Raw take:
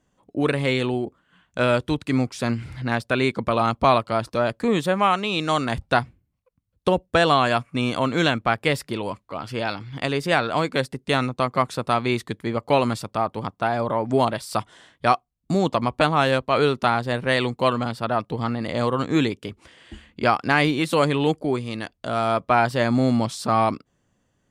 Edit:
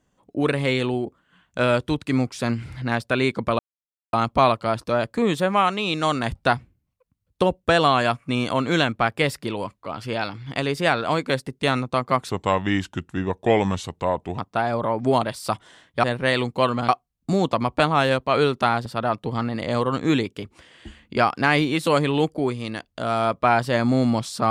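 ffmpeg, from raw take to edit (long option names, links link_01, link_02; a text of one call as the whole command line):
ffmpeg -i in.wav -filter_complex "[0:a]asplit=7[link_01][link_02][link_03][link_04][link_05][link_06][link_07];[link_01]atrim=end=3.59,asetpts=PTS-STARTPTS,afade=type=out:start_time=3.586:duration=0.004:curve=hsin,apad=pad_dur=0.54[link_08];[link_02]atrim=start=3.59:end=11.764,asetpts=PTS-STARTPTS,afade=type=in:duration=0.004:curve=hsin[link_09];[link_03]atrim=start=11.76:end=13.45,asetpts=PTS-STARTPTS,asetrate=35721,aresample=44100,atrim=end_sample=92011,asetpts=PTS-STARTPTS[link_10];[link_04]atrim=start=13.446:end=15.102[link_11];[link_05]atrim=start=17.068:end=17.922[link_12];[link_06]atrim=start=15.098:end=17.072[link_13];[link_07]atrim=start=17.918[link_14];[link_08][link_09]concat=n=2:v=0:a=1[link_15];[link_15][link_10]acrossfade=duration=0.004:curve1=hsin:curve2=hsin[link_16];[link_16][link_11]acrossfade=duration=0.004:curve1=hsin:curve2=hsin[link_17];[link_17][link_12]acrossfade=duration=0.004:curve1=hsin:curve2=hsin[link_18];[link_18][link_13]acrossfade=duration=0.004:curve1=hsin:curve2=hsin[link_19];[link_19][link_14]acrossfade=duration=0.004:curve1=hsin:curve2=hsin" out.wav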